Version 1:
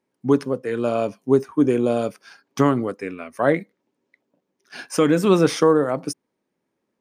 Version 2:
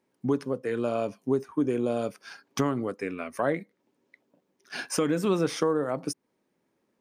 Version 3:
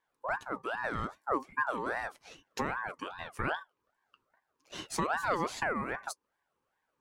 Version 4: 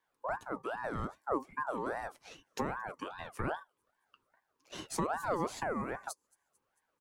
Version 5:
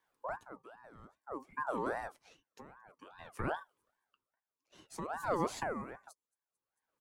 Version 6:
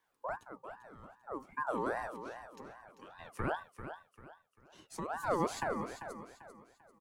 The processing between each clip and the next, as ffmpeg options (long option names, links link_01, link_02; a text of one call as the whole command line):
ffmpeg -i in.wav -af "acompressor=threshold=-33dB:ratio=2,volume=2dB" out.wav
ffmpeg -i in.wav -af "flanger=delay=4.8:depth=2.8:regen=-52:speed=0.35:shape=triangular,aeval=exprs='val(0)*sin(2*PI*1000*n/s+1000*0.35/2.5*sin(2*PI*2.5*n/s))':channel_layout=same" out.wav
ffmpeg -i in.wav -filter_complex "[0:a]acrossover=split=110|1100|6700[link_01][link_02][link_03][link_04];[link_03]acompressor=threshold=-46dB:ratio=6[link_05];[link_04]aecho=1:1:223|446|669|892:0.0708|0.0418|0.0246|0.0145[link_06];[link_01][link_02][link_05][link_06]amix=inputs=4:normalize=0" out.wav
ffmpeg -i in.wav -af "aeval=exprs='val(0)*pow(10,-20*(0.5-0.5*cos(2*PI*0.55*n/s))/20)':channel_layout=same,volume=1dB" out.wav
ffmpeg -i in.wav -af "aecho=1:1:393|786|1179|1572:0.316|0.108|0.0366|0.0124,volume=1dB" out.wav